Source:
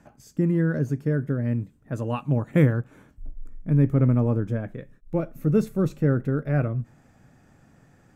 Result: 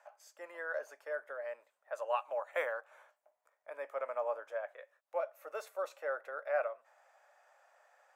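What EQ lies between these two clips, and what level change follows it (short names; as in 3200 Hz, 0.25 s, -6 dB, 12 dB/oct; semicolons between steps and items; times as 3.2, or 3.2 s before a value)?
Chebyshev high-pass 570 Hz, order 5; high shelf 2800 Hz -9.5 dB; 0.0 dB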